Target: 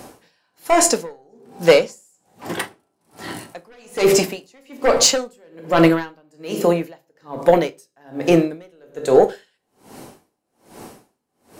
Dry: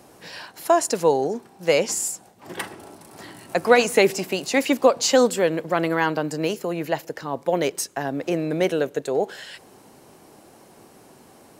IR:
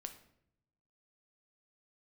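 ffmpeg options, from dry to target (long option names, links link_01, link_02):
-filter_complex "[0:a]aeval=exprs='0.891*sin(PI/2*2.82*val(0)/0.891)':channel_layout=same[link_01];[1:a]atrim=start_sample=2205,asetrate=74970,aresample=44100[link_02];[link_01][link_02]afir=irnorm=-1:irlink=0,aeval=exprs='val(0)*pow(10,-40*(0.5-0.5*cos(2*PI*1.2*n/s))/20)':channel_layout=same,volume=7.5dB"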